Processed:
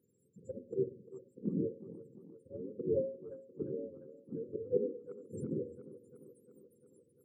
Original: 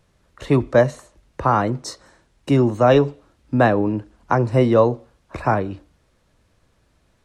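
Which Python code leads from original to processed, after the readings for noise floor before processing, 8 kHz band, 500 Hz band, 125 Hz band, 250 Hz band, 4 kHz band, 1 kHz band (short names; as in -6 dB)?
-63 dBFS, n/a, -18.5 dB, -24.5 dB, -19.5 dB, under -40 dB, under -40 dB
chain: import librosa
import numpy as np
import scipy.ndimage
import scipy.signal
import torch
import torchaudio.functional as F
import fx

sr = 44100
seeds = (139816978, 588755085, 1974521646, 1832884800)

y = fx.octave_mirror(x, sr, pivot_hz=480.0)
y = fx.auto_swell(y, sr, attack_ms=178.0)
y = scipy.signal.sosfilt(scipy.signal.bessel(2, 250.0, 'highpass', norm='mag', fs=sr, output='sos'), y)
y = fx.env_lowpass_down(y, sr, base_hz=980.0, full_db=-22.5)
y = fx.brickwall_bandstop(y, sr, low_hz=550.0, high_hz=7100.0)
y = fx.dynamic_eq(y, sr, hz=380.0, q=0.84, threshold_db=-38.0, ratio=4.0, max_db=-4)
y = fx.rider(y, sr, range_db=4, speed_s=2.0)
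y = fx.hum_notches(y, sr, base_hz=60, count=9)
y = fx.echo_tape(y, sr, ms=349, feedback_pct=67, wet_db=-15, lp_hz=4100.0, drive_db=18.0, wow_cents=13)
y = F.gain(torch.from_numpy(y), -3.0).numpy()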